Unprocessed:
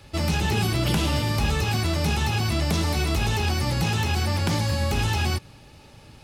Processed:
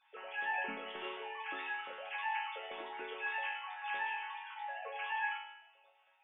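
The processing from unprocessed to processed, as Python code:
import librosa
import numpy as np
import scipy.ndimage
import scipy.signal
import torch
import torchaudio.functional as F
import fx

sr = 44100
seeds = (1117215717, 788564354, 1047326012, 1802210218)

y = fx.sine_speech(x, sr)
y = fx.resonator_bank(y, sr, root=54, chord='minor', decay_s=0.69)
y = fx.echo_feedback(y, sr, ms=84, feedback_pct=53, wet_db=-15)
y = F.gain(torch.from_numpy(y), 1.0).numpy()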